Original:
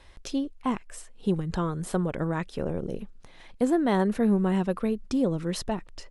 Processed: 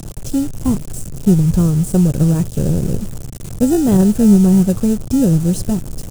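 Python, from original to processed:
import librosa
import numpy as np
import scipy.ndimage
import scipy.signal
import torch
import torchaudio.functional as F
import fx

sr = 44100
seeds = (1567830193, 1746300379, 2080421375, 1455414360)

p1 = fx.sample_hold(x, sr, seeds[0], rate_hz=1100.0, jitter_pct=0)
p2 = x + (p1 * librosa.db_to_amplitude(-6.0))
p3 = fx.low_shelf(p2, sr, hz=150.0, db=8.0)
p4 = fx.dmg_noise_colour(p3, sr, seeds[1], colour='brown', level_db=-38.0)
p5 = fx.quant_dither(p4, sr, seeds[2], bits=6, dither='none')
p6 = fx.graphic_eq(p5, sr, hz=(125, 1000, 2000, 4000, 8000), db=(9, -7, -11, -7, 7))
y = p6 * librosa.db_to_amplitude(5.5)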